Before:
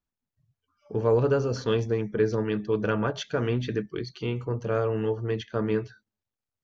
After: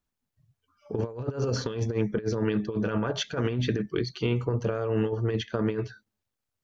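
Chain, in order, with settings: negative-ratio compressor -28 dBFS, ratio -0.5; gain +1.5 dB

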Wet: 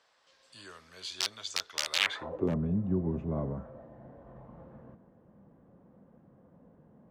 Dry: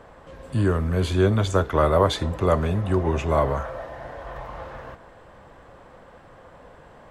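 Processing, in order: wrapped overs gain 9.5 dB; band-pass sweep 4900 Hz -> 200 Hz, 1.93–2.51

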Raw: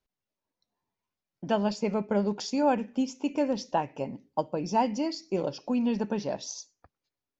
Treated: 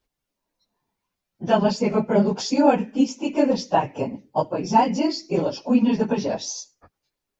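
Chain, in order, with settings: phase scrambler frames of 50 ms; gain +7.5 dB

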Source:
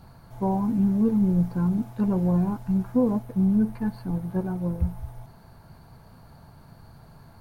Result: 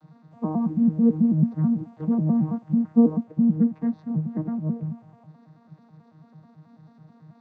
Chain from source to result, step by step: arpeggiated vocoder bare fifth, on D#3, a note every 0.109 s; gain +2.5 dB

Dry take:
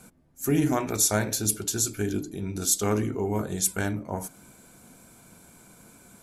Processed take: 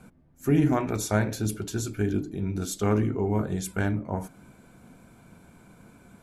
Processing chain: tone controls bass +4 dB, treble -13 dB

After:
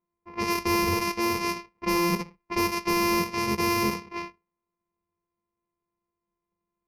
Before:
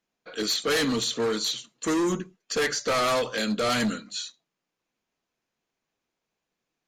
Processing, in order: sample sorter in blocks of 128 samples; low-pass opened by the level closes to 1100 Hz, open at -22.5 dBFS; ripple EQ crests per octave 0.84, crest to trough 14 dB

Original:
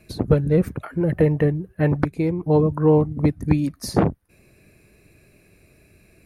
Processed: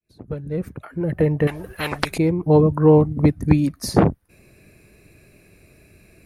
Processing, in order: opening faded in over 1.96 s; 1.47–2.18 spectral compressor 4:1; gain +3 dB

